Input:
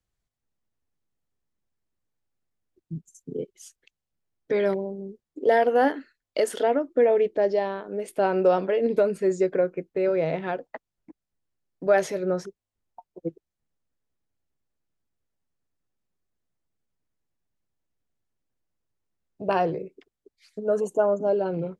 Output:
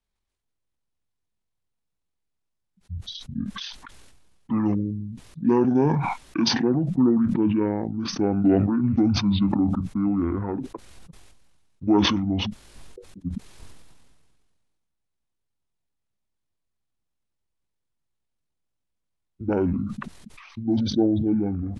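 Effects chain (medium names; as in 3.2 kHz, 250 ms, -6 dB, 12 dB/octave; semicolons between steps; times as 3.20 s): pitch shift -11 st; decay stretcher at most 32 dB/s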